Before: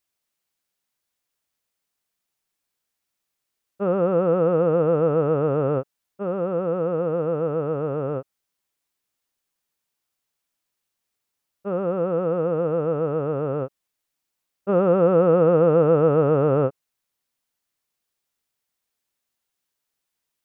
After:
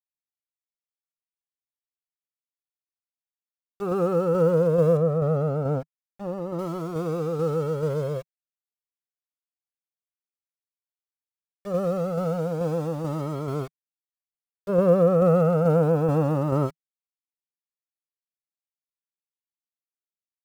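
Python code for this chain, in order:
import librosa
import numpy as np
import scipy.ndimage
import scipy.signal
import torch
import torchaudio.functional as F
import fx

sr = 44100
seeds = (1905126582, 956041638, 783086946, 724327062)

y = np.where(np.abs(x) >= 10.0 ** (-37.0 / 20.0), x, 0.0)
y = fx.dynamic_eq(y, sr, hz=160.0, q=3.1, threshold_db=-37.0, ratio=4.0, max_db=6)
y = fx.tremolo_shape(y, sr, shape='saw_down', hz=2.3, depth_pct=35)
y = fx.high_shelf(y, sr, hz=2000.0, db=-11.0, at=(4.97, 6.59))
y = fx.comb_cascade(y, sr, direction='rising', hz=0.3)
y = F.gain(torch.from_numpy(y), 3.0).numpy()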